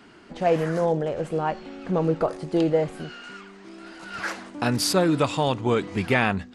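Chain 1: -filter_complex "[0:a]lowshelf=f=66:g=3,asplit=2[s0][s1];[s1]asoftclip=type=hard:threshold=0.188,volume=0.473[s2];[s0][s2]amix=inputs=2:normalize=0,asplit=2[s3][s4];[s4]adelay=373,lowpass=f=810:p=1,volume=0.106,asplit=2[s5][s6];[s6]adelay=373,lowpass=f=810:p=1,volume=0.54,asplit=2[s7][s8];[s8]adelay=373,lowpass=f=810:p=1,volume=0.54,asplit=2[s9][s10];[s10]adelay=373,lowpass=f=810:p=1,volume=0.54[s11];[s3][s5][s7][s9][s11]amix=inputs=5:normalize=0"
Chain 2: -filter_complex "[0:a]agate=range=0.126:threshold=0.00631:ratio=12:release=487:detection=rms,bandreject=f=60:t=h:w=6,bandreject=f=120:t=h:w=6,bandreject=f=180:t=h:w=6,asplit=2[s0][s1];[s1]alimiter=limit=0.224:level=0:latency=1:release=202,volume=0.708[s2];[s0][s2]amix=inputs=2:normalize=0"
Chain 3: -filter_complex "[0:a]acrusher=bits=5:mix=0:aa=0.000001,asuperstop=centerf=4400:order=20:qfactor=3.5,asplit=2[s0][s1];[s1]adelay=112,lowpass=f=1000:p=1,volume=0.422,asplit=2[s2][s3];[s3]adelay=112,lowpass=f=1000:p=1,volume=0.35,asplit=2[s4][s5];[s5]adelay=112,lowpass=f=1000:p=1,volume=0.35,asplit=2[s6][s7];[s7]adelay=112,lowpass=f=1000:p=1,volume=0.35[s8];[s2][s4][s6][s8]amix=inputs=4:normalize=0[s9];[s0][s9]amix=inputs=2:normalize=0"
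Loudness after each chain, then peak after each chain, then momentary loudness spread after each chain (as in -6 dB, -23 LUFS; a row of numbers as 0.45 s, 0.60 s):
-21.0 LUFS, -20.5 LUFS, -24.0 LUFS; -4.5 dBFS, -3.5 dBFS, -5.5 dBFS; 18 LU, 18 LU, 13 LU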